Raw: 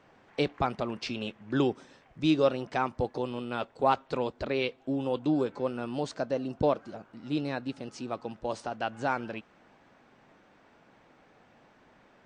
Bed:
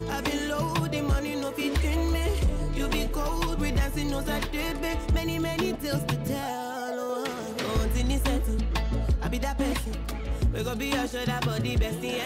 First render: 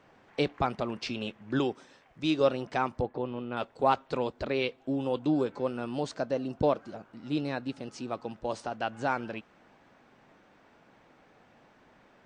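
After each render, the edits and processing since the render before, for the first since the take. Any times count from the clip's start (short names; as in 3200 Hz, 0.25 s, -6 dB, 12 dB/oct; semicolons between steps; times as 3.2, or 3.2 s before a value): 1.59–2.41 low shelf 330 Hz -6.5 dB; 3.01–3.57 air absorption 370 m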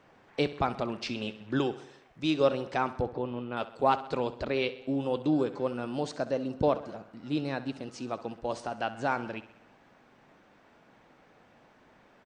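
feedback echo 65 ms, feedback 58%, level -15.5 dB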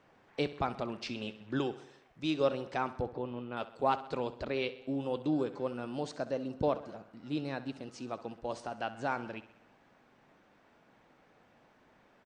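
gain -4.5 dB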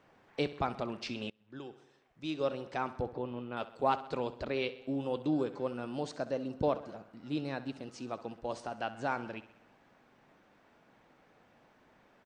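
1.3–3.11 fade in, from -23 dB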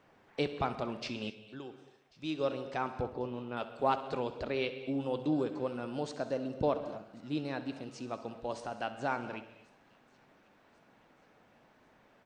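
thin delay 1.091 s, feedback 49%, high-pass 3200 Hz, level -22.5 dB; non-linear reverb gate 0.28 s flat, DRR 11.5 dB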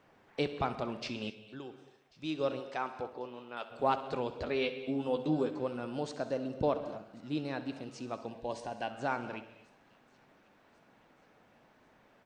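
2.59–3.7 HPF 360 Hz -> 870 Hz 6 dB/oct; 4.39–5.51 doubler 12 ms -5 dB; 8.26–8.9 Butterworth band-stop 1300 Hz, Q 4.2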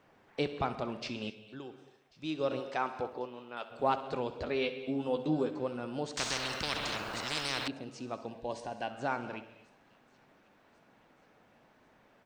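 2.51–3.25 gain +3 dB; 6.17–7.68 spectral compressor 10:1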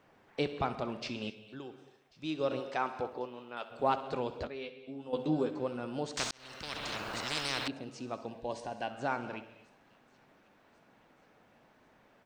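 4.47–5.13 gain -10 dB; 6.31–7.11 fade in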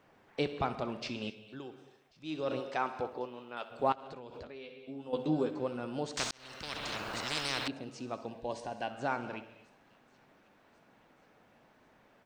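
1.7–2.61 transient shaper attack -7 dB, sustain +1 dB; 3.92–4.82 compressor 10:1, threshold -42 dBFS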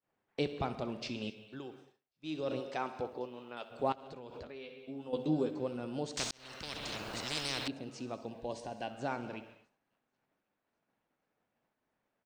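dynamic EQ 1300 Hz, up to -6 dB, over -49 dBFS, Q 0.76; expander -51 dBFS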